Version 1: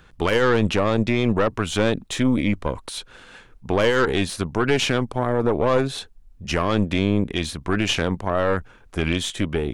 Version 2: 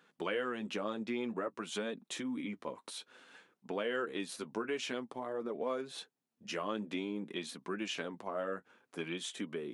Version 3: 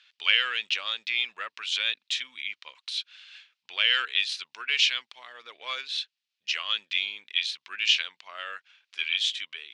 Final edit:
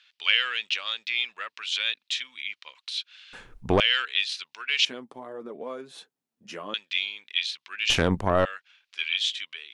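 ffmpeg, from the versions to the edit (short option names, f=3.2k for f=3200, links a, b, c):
-filter_complex "[0:a]asplit=2[a][b];[2:a]asplit=4[c][d][e][f];[c]atrim=end=3.332[g];[a]atrim=start=3.328:end=3.802[h];[d]atrim=start=3.798:end=4.852[i];[1:a]atrim=start=4.848:end=6.742[j];[e]atrim=start=6.738:end=7.902[k];[b]atrim=start=7.898:end=8.452[l];[f]atrim=start=8.448[m];[g][h]acrossfade=d=0.004:c1=hsin:c2=hsin[n];[n][i]acrossfade=d=0.004:c1=hsin:c2=hsin[o];[o][j]acrossfade=d=0.004:c1=hsin:c2=hsin[p];[p][k]acrossfade=d=0.004:c1=hsin:c2=hsin[q];[q][l]acrossfade=d=0.004:c1=hsin:c2=hsin[r];[r][m]acrossfade=d=0.004:c1=hsin:c2=hsin"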